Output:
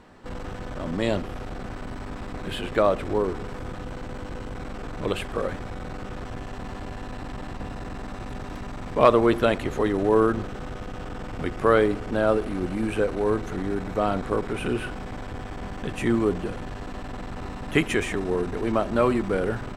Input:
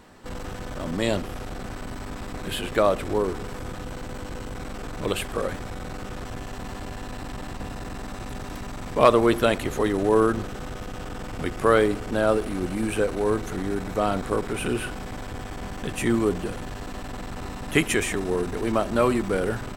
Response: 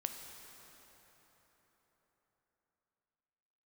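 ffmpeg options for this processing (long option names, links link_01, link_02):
-af "aemphasis=mode=reproduction:type=50kf"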